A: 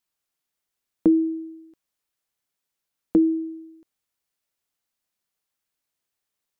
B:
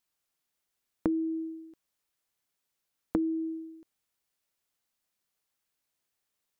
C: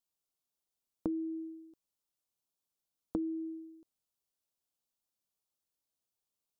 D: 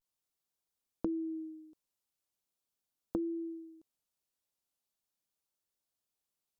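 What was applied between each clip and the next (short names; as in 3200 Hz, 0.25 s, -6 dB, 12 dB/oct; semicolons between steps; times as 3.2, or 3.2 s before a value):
compressor 6:1, threshold -27 dBFS, peak gain reduction 12.5 dB
bell 1900 Hz -15 dB 0.75 oct; gain -6 dB
vibrato 0.4 Hz 63 cents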